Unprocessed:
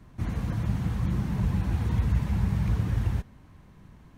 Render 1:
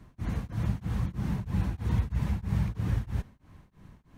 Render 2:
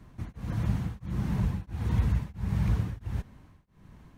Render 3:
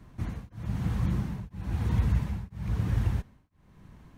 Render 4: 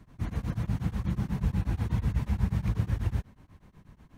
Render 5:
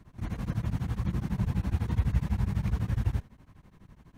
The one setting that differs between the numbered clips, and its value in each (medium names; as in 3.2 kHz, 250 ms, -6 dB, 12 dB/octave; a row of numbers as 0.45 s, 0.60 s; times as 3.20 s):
tremolo of two beating tones, nulls at: 3.1 Hz, 1.5 Hz, 1 Hz, 8.2 Hz, 12 Hz